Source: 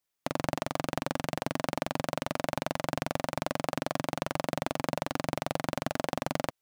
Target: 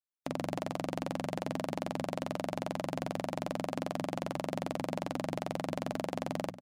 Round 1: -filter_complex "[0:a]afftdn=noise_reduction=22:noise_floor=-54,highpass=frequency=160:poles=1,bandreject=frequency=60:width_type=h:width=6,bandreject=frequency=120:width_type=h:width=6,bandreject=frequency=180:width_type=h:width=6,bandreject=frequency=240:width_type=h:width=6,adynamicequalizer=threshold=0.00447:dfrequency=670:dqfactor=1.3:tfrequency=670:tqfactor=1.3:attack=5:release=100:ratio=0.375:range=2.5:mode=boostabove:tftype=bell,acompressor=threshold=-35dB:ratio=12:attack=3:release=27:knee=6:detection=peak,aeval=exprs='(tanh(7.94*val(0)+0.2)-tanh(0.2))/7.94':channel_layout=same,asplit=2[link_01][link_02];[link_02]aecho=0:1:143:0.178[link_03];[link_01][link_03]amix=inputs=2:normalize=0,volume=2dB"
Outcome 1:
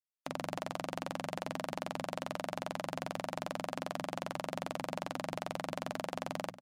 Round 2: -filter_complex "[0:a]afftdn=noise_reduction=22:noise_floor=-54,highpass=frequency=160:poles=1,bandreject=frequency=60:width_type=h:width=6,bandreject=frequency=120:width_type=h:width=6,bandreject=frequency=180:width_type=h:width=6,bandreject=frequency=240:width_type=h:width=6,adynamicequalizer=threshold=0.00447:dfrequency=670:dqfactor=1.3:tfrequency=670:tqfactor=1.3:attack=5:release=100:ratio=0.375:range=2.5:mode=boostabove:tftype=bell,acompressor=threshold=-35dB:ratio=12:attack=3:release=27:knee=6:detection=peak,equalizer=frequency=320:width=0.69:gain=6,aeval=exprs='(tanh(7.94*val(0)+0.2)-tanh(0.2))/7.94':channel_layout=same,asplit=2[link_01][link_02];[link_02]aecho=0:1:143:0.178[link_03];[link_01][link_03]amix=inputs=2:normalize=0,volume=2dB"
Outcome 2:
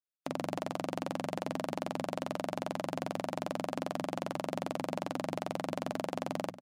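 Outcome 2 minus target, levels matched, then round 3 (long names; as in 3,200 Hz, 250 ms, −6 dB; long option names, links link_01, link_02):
125 Hz band −3.0 dB
-filter_complex "[0:a]afftdn=noise_reduction=22:noise_floor=-54,bandreject=frequency=60:width_type=h:width=6,bandreject=frequency=120:width_type=h:width=6,bandreject=frequency=180:width_type=h:width=6,bandreject=frequency=240:width_type=h:width=6,adynamicequalizer=threshold=0.00447:dfrequency=670:dqfactor=1.3:tfrequency=670:tqfactor=1.3:attack=5:release=100:ratio=0.375:range=2.5:mode=boostabove:tftype=bell,acompressor=threshold=-35dB:ratio=12:attack=3:release=27:knee=6:detection=peak,equalizer=frequency=320:width=0.69:gain=6,aeval=exprs='(tanh(7.94*val(0)+0.2)-tanh(0.2))/7.94':channel_layout=same,asplit=2[link_01][link_02];[link_02]aecho=0:1:143:0.178[link_03];[link_01][link_03]amix=inputs=2:normalize=0,volume=2dB"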